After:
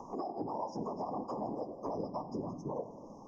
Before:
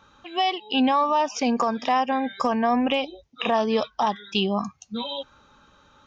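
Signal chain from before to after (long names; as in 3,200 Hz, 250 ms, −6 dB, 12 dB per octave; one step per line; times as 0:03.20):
pitch shifter swept by a sawtooth −1 semitone, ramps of 873 ms
linear-phase brick-wall band-stop 1,100–4,900 Hz
downward compressor 20 to 1, threshold −32 dBFS, peak gain reduction 16 dB
convolution reverb RT60 2.5 s, pre-delay 5 ms, DRR 12 dB
random phases in short frames
parametric band 61 Hz −13 dB 1.8 octaves
delay that swaps between a low-pass and a high-pass 151 ms, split 910 Hz, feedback 52%, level −13.5 dB
time stretch by phase vocoder 0.54×
high-shelf EQ 3,300 Hz −10.5 dB
mains-hum notches 50/100/150 Hz
multiband upward and downward compressor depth 70%
level +2 dB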